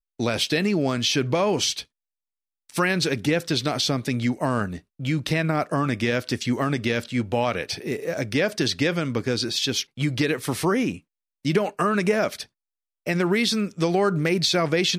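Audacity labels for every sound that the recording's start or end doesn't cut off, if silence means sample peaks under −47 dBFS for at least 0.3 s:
2.690000	11.000000	sound
11.450000	12.460000	sound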